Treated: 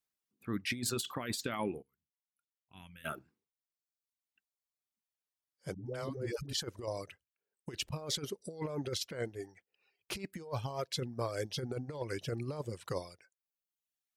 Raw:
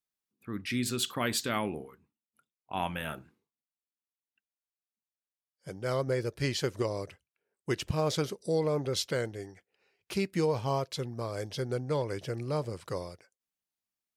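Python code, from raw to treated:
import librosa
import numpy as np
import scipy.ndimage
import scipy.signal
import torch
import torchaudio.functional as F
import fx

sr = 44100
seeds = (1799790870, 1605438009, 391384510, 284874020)

y = fx.dereverb_blind(x, sr, rt60_s=1.0)
y = fx.tone_stack(y, sr, knobs='6-0-2', at=(1.81, 3.04), fade=0.02)
y = fx.over_compress(y, sr, threshold_db=-34.0, ratio=-0.5)
y = fx.dispersion(y, sr, late='highs', ms=120.0, hz=400.0, at=(5.74, 6.53))
y = F.gain(torch.from_numpy(y), -2.0).numpy()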